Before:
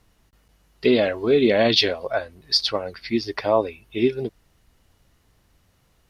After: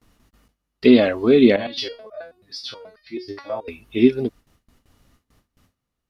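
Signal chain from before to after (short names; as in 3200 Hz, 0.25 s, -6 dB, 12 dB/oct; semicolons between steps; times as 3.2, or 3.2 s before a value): gate with hold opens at -50 dBFS; small resonant body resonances 250/1200 Hz, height 8 dB; 1.56–3.68 stepped resonator 9.3 Hz 100–610 Hz; gain +2 dB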